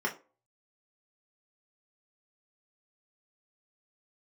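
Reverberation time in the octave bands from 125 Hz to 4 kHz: 0.25, 0.35, 0.40, 0.30, 0.25, 0.20 s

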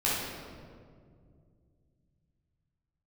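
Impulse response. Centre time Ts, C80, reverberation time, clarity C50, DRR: 0.113 s, 1.0 dB, 2.1 s, -2.5 dB, -8.5 dB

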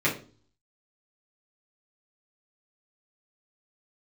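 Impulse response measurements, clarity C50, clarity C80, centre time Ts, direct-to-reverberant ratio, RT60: 10.0 dB, 15.5 dB, 20 ms, -6.5 dB, 0.40 s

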